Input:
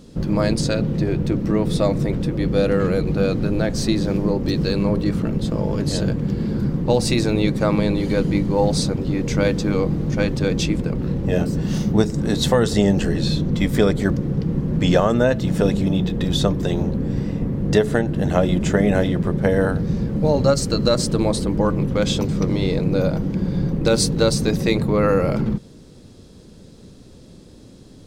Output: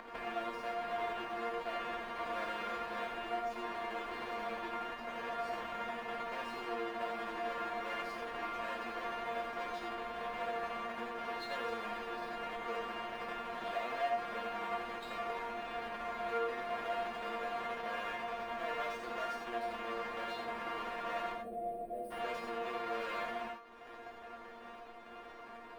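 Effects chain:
each half-wave held at its own peak
brickwall limiter −13 dBFS, peak gain reduction 28 dB
gain on a spectral selection 0:23.24–0:24.06, 670–7,400 Hz −26 dB
wrong playback speed 44.1 kHz file played as 48 kHz
resonators tuned to a chord A#3 fifth, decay 0.21 s
upward compression, threshold −25 dBFS
three-way crossover with the lows and the highs turned down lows −22 dB, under 480 Hz, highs −23 dB, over 2,900 Hz
reverb whose tail is shaped and stops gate 110 ms rising, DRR 2.5 dB
level −4 dB

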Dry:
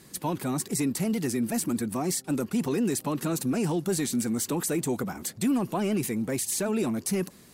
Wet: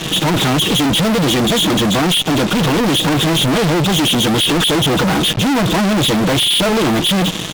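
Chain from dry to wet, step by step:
hearing-aid frequency compression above 2,400 Hz 4 to 1
high-shelf EQ 3,000 Hz −10 dB
comb filter 6.3 ms, depth 66%
fuzz pedal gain 52 dB, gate −51 dBFS

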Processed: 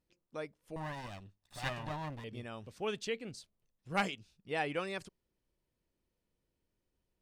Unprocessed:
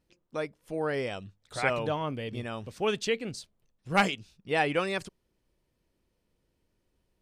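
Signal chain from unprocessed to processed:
0:00.76–0:02.24: lower of the sound and its delayed copy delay 1.1 ms
level −8.5 dB

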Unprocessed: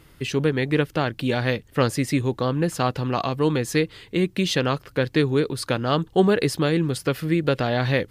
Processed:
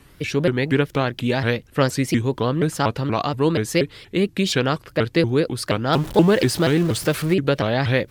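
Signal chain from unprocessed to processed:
0:05.93–0:07.34: converter with a step at zero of −30 dBFS
pitch modulation by a square or saw wave saw up 4.2 Hz, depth 250 cents
level +2 dB

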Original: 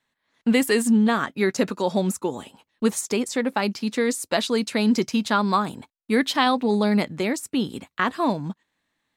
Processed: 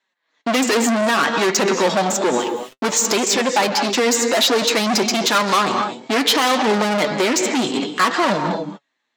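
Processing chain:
leveller curve on the samples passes 3
Butterworth low-pass 7,600 Hz 72 dB per octave
reverb whose tail is shaped and stops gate 270 ms rising, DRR 10.5 dB
soft clipping −18.5 dBFS, distortion −8 dB
high-pass filter 330 Hz 12 dB per octave
0:02.39–0:03.01: centre clipping without the shift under −47 dBFS
flanger 0.6 Hz, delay 5 ms, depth 3.7 ms, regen +46%
boost into a limiter +17.5 dB
level −6 dB

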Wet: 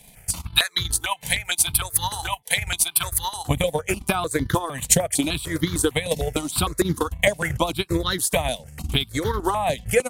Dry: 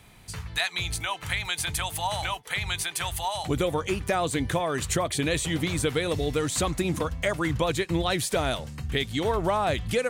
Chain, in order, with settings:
transient designer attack +10 dB, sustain −11 dB
parametric band 12,000 Hz +10 dB 1.1 octaves
step-sequenced phaser 6.6 Hz 340–2,500 Hz
level +3.5 dB

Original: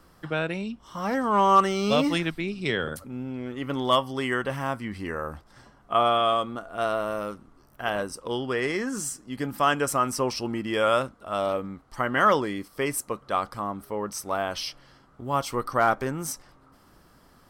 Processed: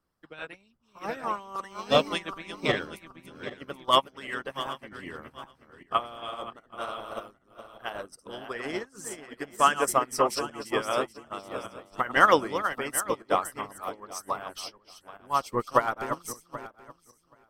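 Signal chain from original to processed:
feedback delay that plays each chunk backwards 389 ms, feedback 62%, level −5.5 dB
in parallel at −3 dB: brickwall limiter −18 dBFS, peak gain reduction 10.5 dB
on the sum: harmonic and percussive parts rebalanced harmonic −15 dB
expander for the loud parts 2.5 to 1, over −38 dBFS
level +5.5 dB

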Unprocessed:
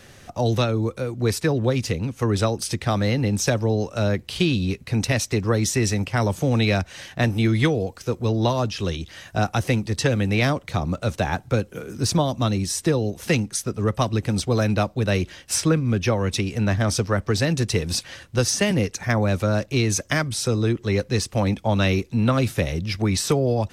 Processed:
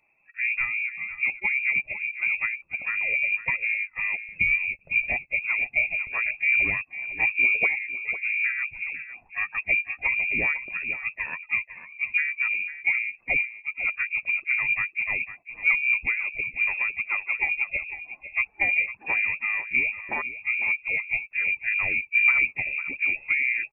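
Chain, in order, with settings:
spectral dynamics exaggerated over time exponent 1.5
graphic EQ with 15 bands 100 Hz −6 dB, 250 Hz +11 dB, 1,000 Hz −8 dB
pitch-shifted copies added +4 semitones −10 dB
on a send: single-tap delay 502 ms −12.5 dB
on the sum: voice inversion scrambler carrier 2,600 Hz
level −4.5 dB

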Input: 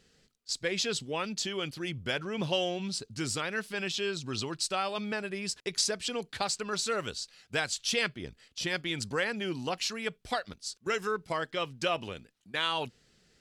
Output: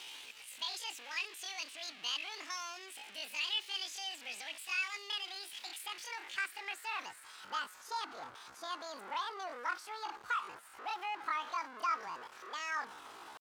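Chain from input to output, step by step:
converter with a step at zero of −29 dBFS
dynamic equaliser 2,200 Hz, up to +4 dB, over −44 dBFS, Q 3.2
band-pass filter sweep 1,400 Hz → 670 Hz, 0:05.49–0:07.74
pitch shifter +11.5 semitones
level −2.5 dB

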